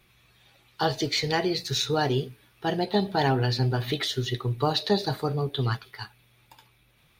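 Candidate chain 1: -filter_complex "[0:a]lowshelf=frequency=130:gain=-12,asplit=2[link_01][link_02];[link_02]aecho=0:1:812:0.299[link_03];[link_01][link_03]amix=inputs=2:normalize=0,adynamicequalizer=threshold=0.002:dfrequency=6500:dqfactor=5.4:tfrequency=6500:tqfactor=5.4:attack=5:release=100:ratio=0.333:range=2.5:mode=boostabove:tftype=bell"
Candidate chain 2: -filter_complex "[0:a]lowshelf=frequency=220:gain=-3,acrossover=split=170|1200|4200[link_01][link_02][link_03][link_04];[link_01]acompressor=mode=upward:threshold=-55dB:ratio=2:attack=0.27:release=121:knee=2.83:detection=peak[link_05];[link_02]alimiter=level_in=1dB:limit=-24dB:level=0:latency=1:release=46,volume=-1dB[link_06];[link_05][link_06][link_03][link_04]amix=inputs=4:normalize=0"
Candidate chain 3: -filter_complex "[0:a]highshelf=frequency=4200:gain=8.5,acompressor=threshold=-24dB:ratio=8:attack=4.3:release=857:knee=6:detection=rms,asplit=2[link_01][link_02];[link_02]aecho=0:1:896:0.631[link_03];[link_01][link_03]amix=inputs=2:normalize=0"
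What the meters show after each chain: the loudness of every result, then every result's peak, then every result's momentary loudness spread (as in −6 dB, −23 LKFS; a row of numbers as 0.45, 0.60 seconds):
−28.0, −29.0, −31.5 LKFS; −10.0, −12.5, −16.0 dBFS; 13, 8, 8 LU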